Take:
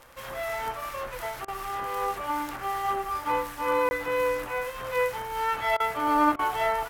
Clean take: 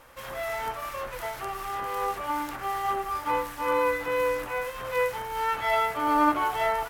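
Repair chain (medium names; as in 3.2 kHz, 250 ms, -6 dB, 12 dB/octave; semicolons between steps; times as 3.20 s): de-click; interpolate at 3.89 s, 20 ms; interpolate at 1.45/5.77/6.36 s, 29 ms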